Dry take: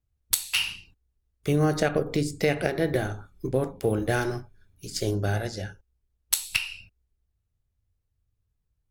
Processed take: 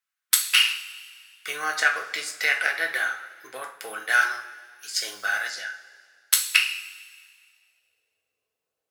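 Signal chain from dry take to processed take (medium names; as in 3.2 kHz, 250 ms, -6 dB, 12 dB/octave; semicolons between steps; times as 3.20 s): high-pass sweep 1.5 kHz -> 500 Hz, 7.15–7.95 s; two-slope reverb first 0.31 s, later 2 s, from -17 dB, DRR 2.5 dB; 5.05–5.49 s: added noise violet -61 dBFS; trim +3 dB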